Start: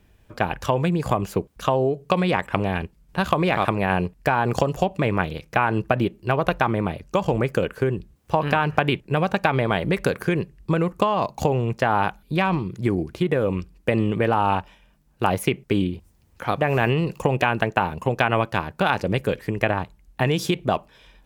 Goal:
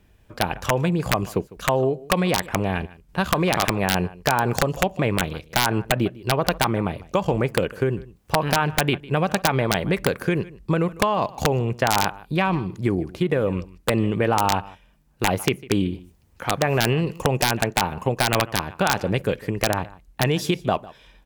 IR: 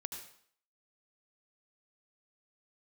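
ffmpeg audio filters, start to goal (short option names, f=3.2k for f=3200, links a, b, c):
-af "aecho=1:1:152:0.1,aeval=exprs='(mod(2.37*val(0)+1,2)-1)/2.37':c=same"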